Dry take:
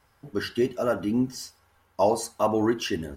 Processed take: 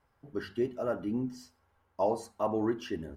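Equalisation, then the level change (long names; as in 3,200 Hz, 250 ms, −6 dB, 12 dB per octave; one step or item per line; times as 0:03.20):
high-shelf EQ 2,300 Hz −11.5 dB
mains-hum notches 50/100/150/200/250 Hz
−6.0 dB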